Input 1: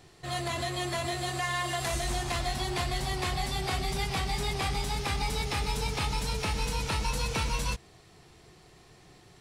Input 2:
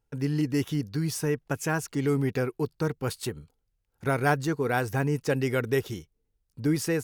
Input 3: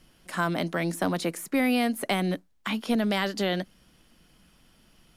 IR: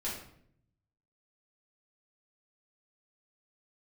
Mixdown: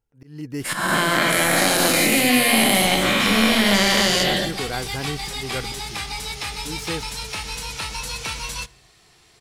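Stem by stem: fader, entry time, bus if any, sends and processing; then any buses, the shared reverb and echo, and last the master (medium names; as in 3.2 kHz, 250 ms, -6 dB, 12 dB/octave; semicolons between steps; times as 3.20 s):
0.0 dB, 0.90 s, no bus, send -21.5 dB, tilt shelf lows -6 dB
-3.0 dB, 0.00 s, bus A, no send, none
+2.0 dB, 0.60 s, bus A, send -10.5 dB, every event in the spectrogram widened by 480 ms; treble shelf 2 kHz +10 dB
bus A: 0.0 dB, slow attack 288 ms; compression 4:1, threshold -20 dBFS, peak gain reduction 9 dB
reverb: on, RT60 0.65 s, pre-delay 4 ms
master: none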